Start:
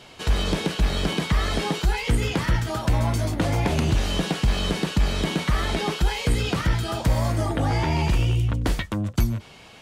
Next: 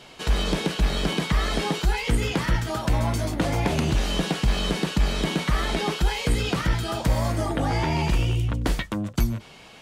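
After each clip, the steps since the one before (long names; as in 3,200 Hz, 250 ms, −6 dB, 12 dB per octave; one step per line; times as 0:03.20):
parametric band 91 Hz −13.5 dB 0.3 octaves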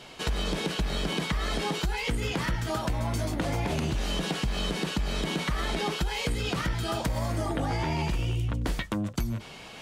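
reversed playback
upward compression, threshold −39 dBFS
reversed playback
brickwall limiter −15 dBFS, peak gain reduction 4 dB
downward compressor, threshold −25 dBFS, peak gain reduction 6.5 dB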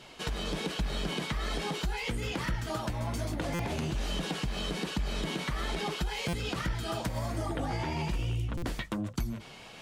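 flanger 1.2 Hz, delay 0.4 ms, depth 9.4 ms, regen −47%
buffer that repeats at 0:03.54/0:06.28/0:08.57, samples 256, times 8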